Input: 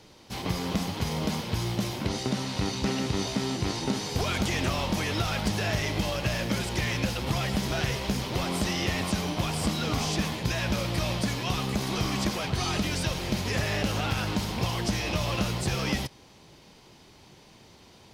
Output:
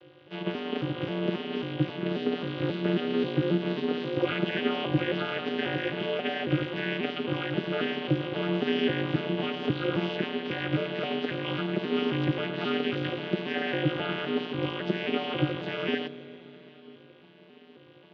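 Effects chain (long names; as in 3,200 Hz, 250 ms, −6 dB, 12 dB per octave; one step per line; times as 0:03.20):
vocoder with an arpeggio as carrier minor triad, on A3, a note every 269 ms
loudspeaker in its box 210–3,400 Hz, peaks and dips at 210 Hz −4 dB, 430 Hz +6 dB, 630 Hz −4 dB, 910 Hz −9 dB, 1,500 Hz +5 dB, 3,000 Hz +10 dB
four-comb reverb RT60 3.6 s, combs from 27 ms, DRR 13.5 dB
ring modulation 82 Hz
level +6 dB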